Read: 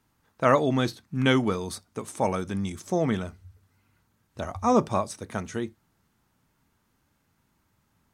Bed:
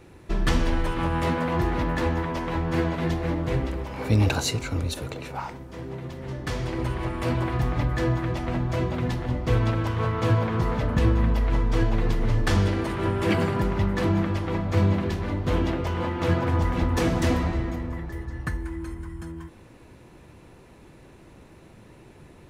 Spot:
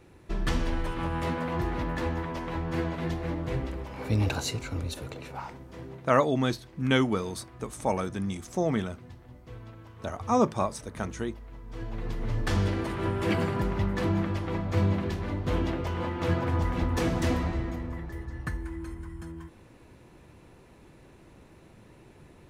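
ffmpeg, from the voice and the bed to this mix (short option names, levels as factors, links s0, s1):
-filter_complex "[0:a]adelay=5650,volume=0.794[s0];[1:a]volume=4.47,afade=t=out:st=5.83:d=0.34:silence=0.141254,afade=t=in:st=11.63:d=1.05:silence=0.11885[s1];[s0][s1]amix=inputs=2:normalize=0"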